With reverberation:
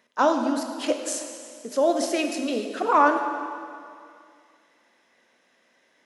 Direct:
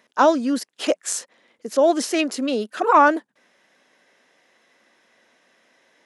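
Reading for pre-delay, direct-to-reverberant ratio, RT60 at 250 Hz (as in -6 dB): 6 ms, 4.5 dB, 2.3 s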